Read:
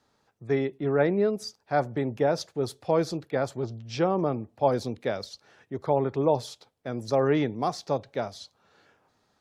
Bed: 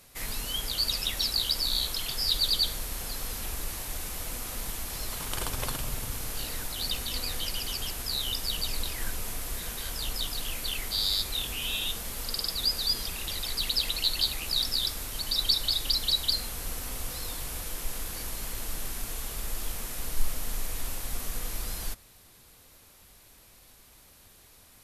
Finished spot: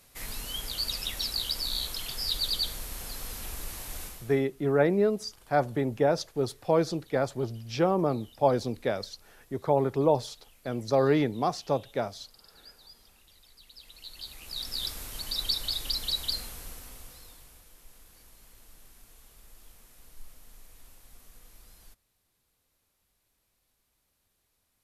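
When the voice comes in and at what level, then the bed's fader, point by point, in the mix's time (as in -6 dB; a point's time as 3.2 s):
3.80 s, 0.0 dB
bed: 4.04 s -3.5 dB
4.49 s -25.5 dB
13.67 s -25.5 dB
14.85 s -4 dB
16.37 s -4 dB
17.67 s -20 dB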